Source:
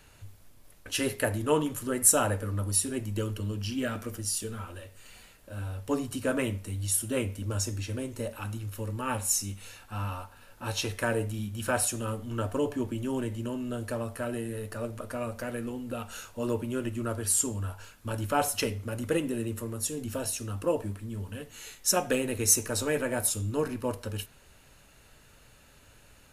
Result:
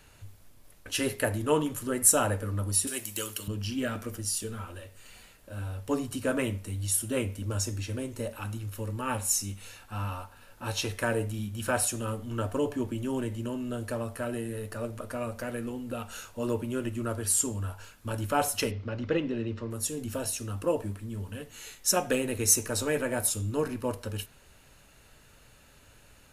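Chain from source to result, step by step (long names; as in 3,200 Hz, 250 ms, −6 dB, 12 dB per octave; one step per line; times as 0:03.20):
0:02.87–0:03.48: spectral tilt +4.5 dB per octave
0:18.71–0:19.71: Butterworth low-pass 5,200 Hz 36 dB per octave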